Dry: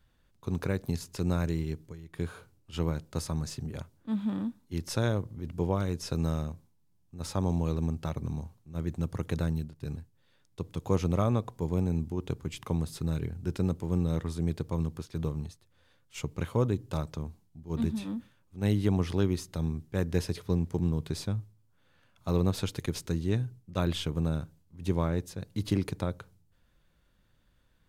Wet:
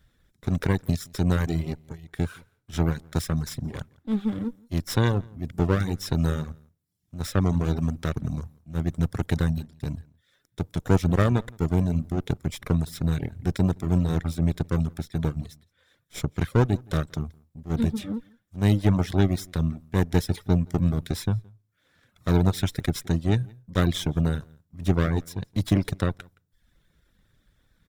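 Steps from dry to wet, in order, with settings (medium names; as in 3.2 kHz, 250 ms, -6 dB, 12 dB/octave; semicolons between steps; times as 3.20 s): comb filter that takes the minimum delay 0.55 ms; echo from a far wall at 29 m, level -16 dB; reverb removal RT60 0.66 s; trim +6.5 dB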